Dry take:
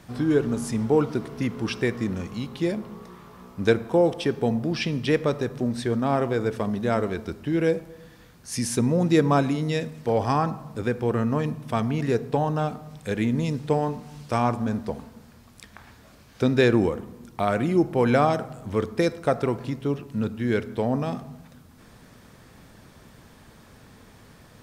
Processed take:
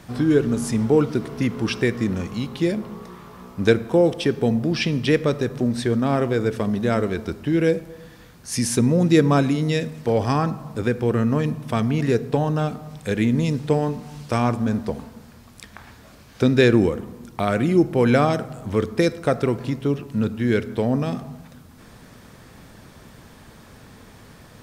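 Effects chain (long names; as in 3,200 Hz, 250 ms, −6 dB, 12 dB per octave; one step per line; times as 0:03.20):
dynamic equaliser 860 Hz, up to −6 dB, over −36 dBFS, Q 1.3
level +4.5 dB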